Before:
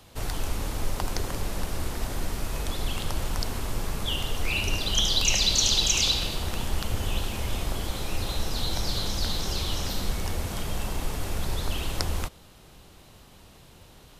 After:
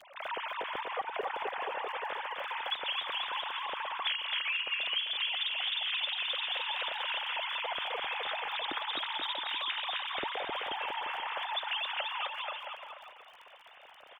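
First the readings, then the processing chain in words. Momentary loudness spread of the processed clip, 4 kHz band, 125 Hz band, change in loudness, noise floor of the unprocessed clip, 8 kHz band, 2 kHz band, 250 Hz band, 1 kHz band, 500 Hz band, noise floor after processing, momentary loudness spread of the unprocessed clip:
6 LU, -4.5 dB, under -35 dB, -5.5 dB, -52 dBFS, under -40 dB, +1.5 dB, -19.5 dB, +2.5 dB, -5.0 dB, -55 dBFS, 12 LU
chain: formants replaced by sine waves; bass shelf 220 Hz +5 dB; crackle 17 per s -40 dBFS; on a send: bouncing-ball echo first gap 260 ms, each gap 0.85×, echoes 5; on the sum: compression 10:1, threshold -26 dBFS, peak gain reduction 18 dB; trim -4.5 dB

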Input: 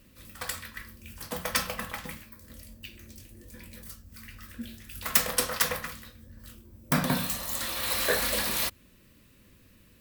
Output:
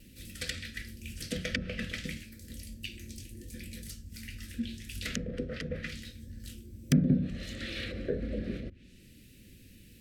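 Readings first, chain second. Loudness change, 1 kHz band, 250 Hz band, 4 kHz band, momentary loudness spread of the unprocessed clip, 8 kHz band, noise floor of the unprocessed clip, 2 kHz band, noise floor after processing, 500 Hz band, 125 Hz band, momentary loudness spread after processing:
-8.0 dB, -21.5 dB, +4.0 dB, -7.5 dB, 21 LU, -13.0 dB, -59 dBFS, -7.0 dB, -55 dBFS, -4.0 dB, +4.5 dB, 18 LU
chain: Butterworth band-stop 940 Hz, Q 0.56; vibrato 0.34 Hz 6.5 cents; low-pass that closes with the level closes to 480 Hz, closed at -25 dBFS; trim +4.5 dB

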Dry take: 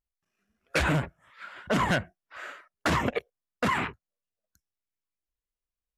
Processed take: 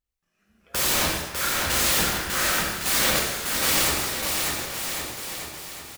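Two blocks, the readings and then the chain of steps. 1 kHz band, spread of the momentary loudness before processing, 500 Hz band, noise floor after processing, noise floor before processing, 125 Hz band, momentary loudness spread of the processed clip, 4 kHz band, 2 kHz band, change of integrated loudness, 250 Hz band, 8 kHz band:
+2.5 dB, 18 LU, +2.0 dB, -77 dBFS, under -85 dBFS, -2.5 dB, 11 LU, +14.5 dB, +5.5 dB, +6.0 dB, -1.0 dB, +22.5 dB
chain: level rider gain up to 11 dB; integer overflow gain 21.5 dB; on a send: bouncing-ball echo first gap 600 ms, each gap 0.85×, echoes 5; on the sum: gated-style reverb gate 370 ms falling, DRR -3 dB

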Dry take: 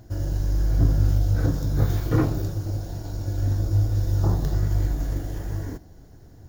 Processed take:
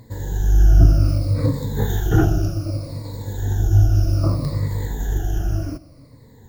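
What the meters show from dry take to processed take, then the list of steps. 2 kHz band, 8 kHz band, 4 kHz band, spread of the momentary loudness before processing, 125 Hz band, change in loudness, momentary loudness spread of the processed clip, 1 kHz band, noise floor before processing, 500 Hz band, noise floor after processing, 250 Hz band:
+6.0 dB, +5.5 dB, +5.5 dB, 10 LU, +4.5 dB, +5.0 dB, 13 LU, +4.5 dB, -48 dBFS, +4.5 dB, -47 dBFS, +4.0 dB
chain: drifting ripple filter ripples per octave 0.98, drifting -0.64 Hz, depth 19 dB; trim +1 dB

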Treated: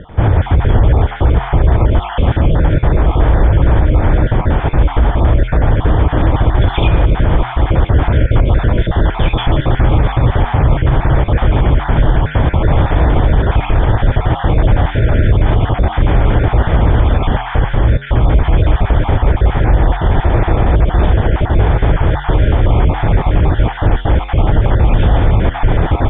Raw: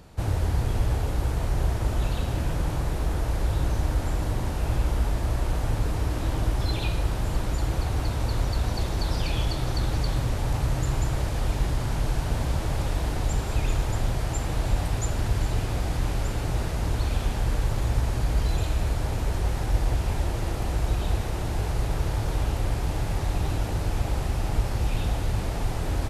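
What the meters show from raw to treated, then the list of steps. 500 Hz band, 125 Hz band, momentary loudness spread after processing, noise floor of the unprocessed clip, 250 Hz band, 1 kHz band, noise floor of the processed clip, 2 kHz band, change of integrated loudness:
+16.0 dB, +14.5 dB, 2 LU, -29 dBFS, +15.5 dB, +15.5 dB, -23 dBFS, +14.5 dB, +14.0 dB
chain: random holes in the spectrogram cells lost 25%; peaking EQ 2.7 kHz -9.5 dB 0.3 oct; flange 0.49 Hz, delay 9.7 ms, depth 3.5 ms, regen -85%; Chebyshev low-pass 3.5 kHz, order 10; loudness maximiser +24 dB; trim -1 dB

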